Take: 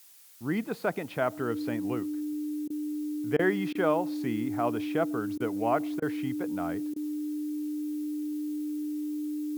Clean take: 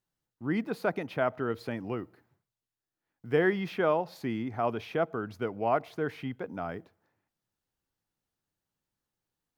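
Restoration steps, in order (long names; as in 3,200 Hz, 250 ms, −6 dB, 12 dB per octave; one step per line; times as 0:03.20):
notch filter 300 Hz, Q 30
repair the gap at 0:02.68/0:03.37/0:03.73/0:05.38/0:06.00/0:06.94, 20 ms
noise reduction from a noise print 30 dB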